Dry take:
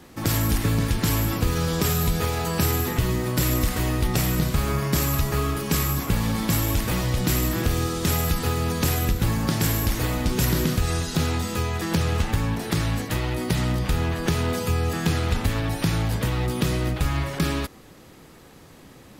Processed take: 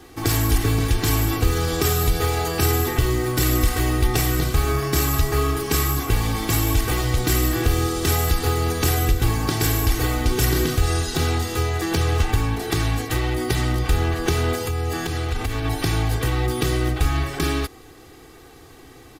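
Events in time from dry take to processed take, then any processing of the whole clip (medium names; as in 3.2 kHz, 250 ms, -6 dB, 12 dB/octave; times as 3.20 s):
14.54–15.65 s: compression, threshold -23 dBFS
whole clip: comb 2.6 ms, depth 76%; trim +1 dB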